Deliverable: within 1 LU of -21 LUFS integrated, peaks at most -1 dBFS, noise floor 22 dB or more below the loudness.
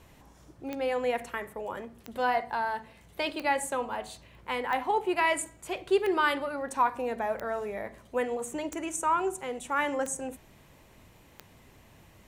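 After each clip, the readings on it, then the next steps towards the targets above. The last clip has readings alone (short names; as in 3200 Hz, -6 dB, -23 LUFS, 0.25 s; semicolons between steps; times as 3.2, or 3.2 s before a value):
clicks 9; loudness -30.5 LUFS; peak -13.5 dBFS; loudness target -21.0 LUFS
-> de-click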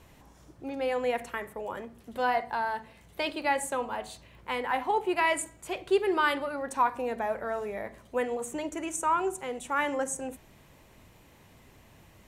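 clicks 0; loudness -30.5 LUFS; peak -14.0 dBFS; loudness target -21.0 LUFS
-> gain +9.5 dB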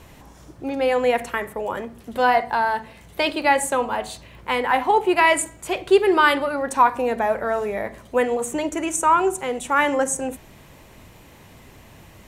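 loudness -21.0 LUFS; peak -4.5 dBFS; noise floor -48 dBFS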